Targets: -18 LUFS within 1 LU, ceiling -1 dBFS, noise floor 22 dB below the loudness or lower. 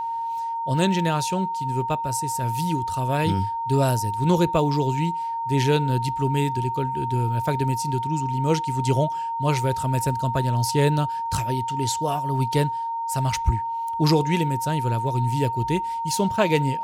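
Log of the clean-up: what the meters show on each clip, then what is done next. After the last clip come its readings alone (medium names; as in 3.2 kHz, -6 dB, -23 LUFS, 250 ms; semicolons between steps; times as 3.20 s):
steady tone 920 Hz; tone level -25 dBFS; loudness -23.5 LUFS; peak level -7.0 dBFS; loudness target -18.0 LUFS
-> band-stop 920 Hz, Q 30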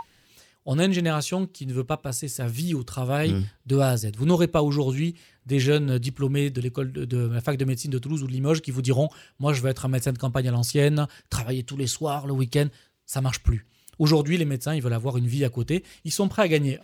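steady tone not found; loudness -25.0 LUFS; peak level -6.5 dBFS; loudness target -18.0 LUFS
-> trim +7 dB; peak limiter -1 dBFS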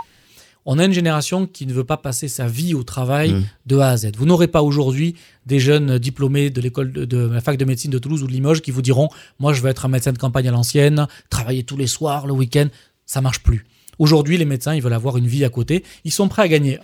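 loudness -18.0 LUFS; peak level -1.0 dBFS; noise floor -55 dBFS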